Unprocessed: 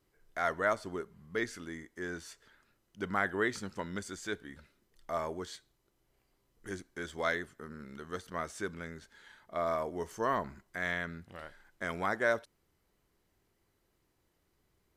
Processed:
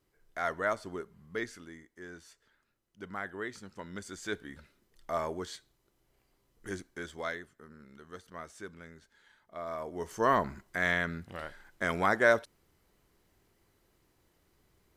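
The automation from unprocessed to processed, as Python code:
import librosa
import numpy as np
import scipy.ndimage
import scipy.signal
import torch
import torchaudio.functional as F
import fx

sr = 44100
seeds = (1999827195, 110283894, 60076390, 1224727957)

y = fx.gain(x, sr, db=fx.line((1.32, -1.0), (1.85, -7.5), (3.65, -7.5), (4.36, 2.0), (6.85, 2.0), (7.44, -7.0), (9.66, -7.0), (10.28, 5.5)))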